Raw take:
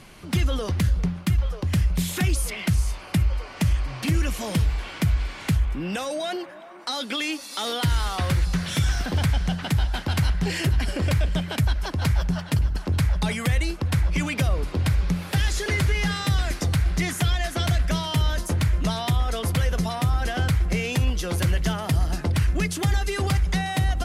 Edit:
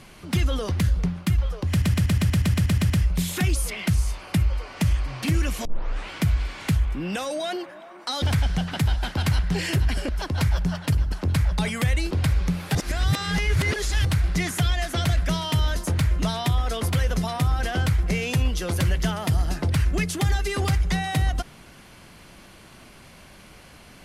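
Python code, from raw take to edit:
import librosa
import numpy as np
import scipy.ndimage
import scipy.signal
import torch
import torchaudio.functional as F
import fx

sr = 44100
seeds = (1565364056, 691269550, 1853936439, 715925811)

y = fx.edit(x, sr, fx.stutter(start_s=1.7, slice_s=0.12, count=11),
    fx.tape_start(start_s=4.45, length_s=0.45),
    fx.cut(start_s=7.02, length_s=2.11),
    fx.cut(start_s=11.0, length_s=0.73),
    fx.cut(start_s=13.75, length_s=0.98),
    fx.reverse_span(start_s=15.37, length_s=1.3), tone=tone)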